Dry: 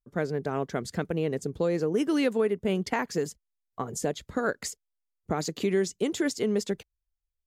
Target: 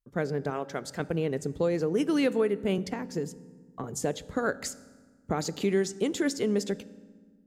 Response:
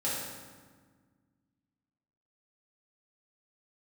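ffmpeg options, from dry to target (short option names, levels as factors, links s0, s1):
-filter_complex "[0:a]asettb=1/sr,asplit=3[s0][s1][s2];[s0]atrim=end=0.504[s3];[s1]atrim=start=0.5:end=1,asetpts=PTS-STARTPTS,afade=t=in:d=0.004:c=qsin,afade=t=out:st=0.496:d=0.004:c=qsin,lowshelf=f=270:g=-11.5[s4];[s2]atrim=start=0.996[s5];[s3][s4]acrossfade=d=0.004:c1=hsin:c2=qsin[s6];[s6][s5]acrossfade=d=0.004:c1=qsin:c2=hsin,asettb=1/sr,asplit=3[s7][s8][s9];[s7]atrim=end=2.784[s10];[s8]atrim=start=2.78:end=3.84,asetpts=PTS-STARTPTS,afade=t=in:d=0.004:c=qsin,afade=t=out:st=1.056:d=0.004:c=qsin,acrossover=split=400[s11][s12];[s12]acompressor=threshold=0.0126:ratio=4[s13];[s11][s13]amix=inputs=2:normalize=0[s14];[s9]atrim=start=3.836[s15];[s10][s14]acrossfade=d=0.004:c1=hsin:c2=qsin[s16];[s16][s15]acrossfade=d=0.004:c1=qsin:c2=hsin,asplit=2[s17][s18];[1:a]atrim=start_sample=2205,lowshelf=f=140:g=11[s19];[s18][s19]afir=irnorm=-1:irlink=0,volume=0.075[s20];[s17][s20]amix=inputs=2:normalize=0,volume=0.891"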